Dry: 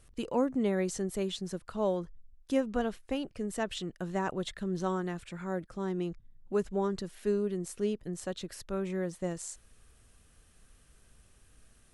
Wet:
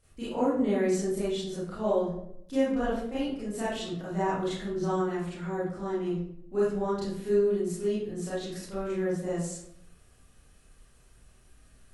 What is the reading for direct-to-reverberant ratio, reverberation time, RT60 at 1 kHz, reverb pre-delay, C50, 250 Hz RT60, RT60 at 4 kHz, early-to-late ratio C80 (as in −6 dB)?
−11.0 dB, 0.75 s, 0.70 s, 28 ms, −1.0 dB, 0.90 s, 0.45 s, 5.0 dB